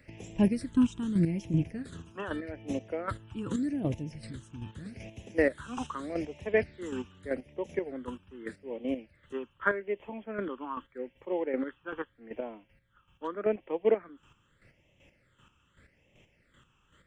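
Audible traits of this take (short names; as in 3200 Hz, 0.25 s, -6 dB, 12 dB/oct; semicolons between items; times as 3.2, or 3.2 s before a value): chopped level 2.6 Hz, depth 60%, duty 25%; phasing stages 8, 0.82 Hz, lowest notch 590–1400 Hz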